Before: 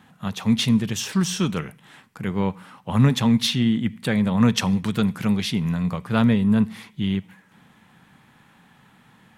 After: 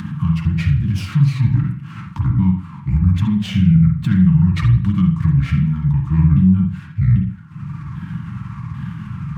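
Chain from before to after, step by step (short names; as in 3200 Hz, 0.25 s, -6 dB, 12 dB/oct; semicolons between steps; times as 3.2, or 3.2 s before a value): repeated pitch sweeps -8.5 st, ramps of 0.795 s; HPF 82 Hz 12 dB/oct; tilt -4 dB/oct; upward compressor, threshold -17 dBFS; limiter -6.5 dBFS, peak gain reduction 9 dB; compressor 3:1, threshold -16 dBFS, peak gain reduction 5.5 dB; elliptic band-stop 280–1000 Hz, stop band 40 dB; notch comb 250 Hz; on a send at -3 dB: reverb, pre-delay 43 ms; on the sum: running maximum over 3 samples; gain +3.5 dB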